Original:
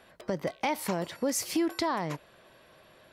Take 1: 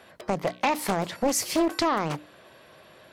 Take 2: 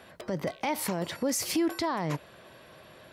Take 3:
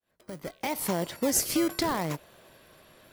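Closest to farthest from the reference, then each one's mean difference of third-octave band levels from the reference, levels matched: 1, 2, 3; 2.0 dB, 3.5 dB, 5.5 dB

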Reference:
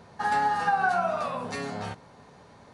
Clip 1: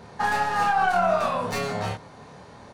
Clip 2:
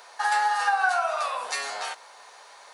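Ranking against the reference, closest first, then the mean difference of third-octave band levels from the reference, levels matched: 1, 2; 3.0 dB, 10.0 dB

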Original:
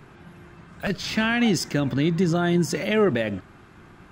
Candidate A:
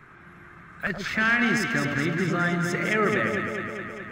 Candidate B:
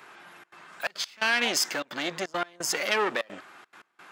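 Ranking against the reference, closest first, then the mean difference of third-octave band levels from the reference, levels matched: A, B; 7.0 dB, 10.5 dB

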